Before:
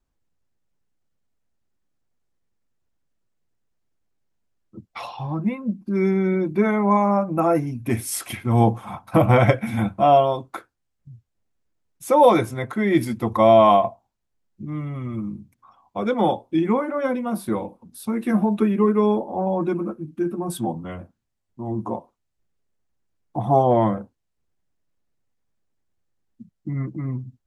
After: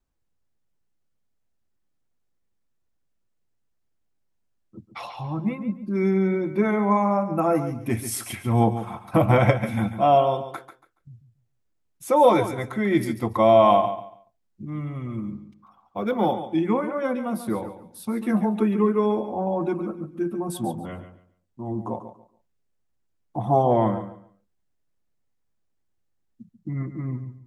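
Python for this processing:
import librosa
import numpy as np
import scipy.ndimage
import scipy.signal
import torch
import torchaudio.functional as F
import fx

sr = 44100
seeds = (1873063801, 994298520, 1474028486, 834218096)

p1 = x + fx.echo_feedback(x, sr, ms=141, feedback_pct=23, wet_db=-11, dry=0)
p2 = fx.resample_linear(p1, sr, factor=3, at=(15.31, 16.33))
y = F.gain(torch.from_numpy(p2), -2.5).numpy()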